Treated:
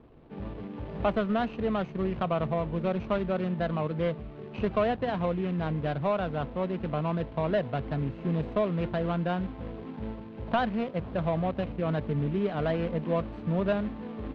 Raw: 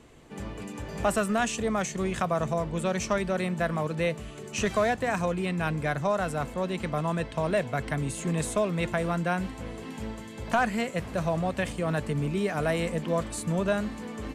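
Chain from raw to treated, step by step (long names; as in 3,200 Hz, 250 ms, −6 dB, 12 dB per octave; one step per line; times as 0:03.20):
running median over 25 samples
low-pass filter 3,600 Hz 24 dB per octave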